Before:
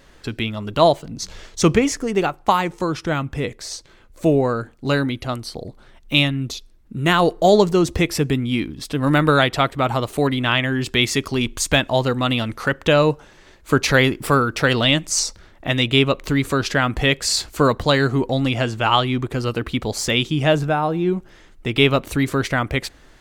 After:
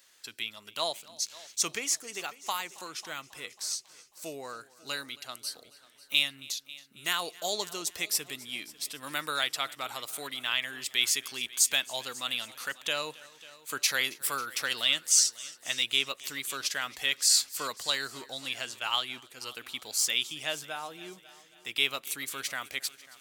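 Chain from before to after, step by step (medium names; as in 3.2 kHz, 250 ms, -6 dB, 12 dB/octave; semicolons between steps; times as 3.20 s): differentiator; multi-head delay 272 ms, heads first and second, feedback 45%, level -22 dB; 18.79–19.57 s: gate -42 dBFS, range -6 dB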